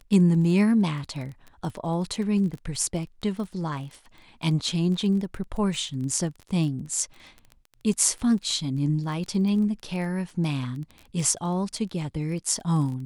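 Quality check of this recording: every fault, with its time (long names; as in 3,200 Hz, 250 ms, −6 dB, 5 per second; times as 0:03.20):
surface crackle 17 per second −33 dBFS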